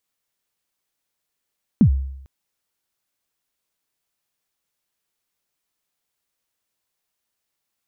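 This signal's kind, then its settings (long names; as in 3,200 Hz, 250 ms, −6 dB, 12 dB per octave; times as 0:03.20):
synth kick length 0.45 s, from 260 Hz, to 67 Hz, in 88 ms, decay 0.78 s, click off, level −7 dB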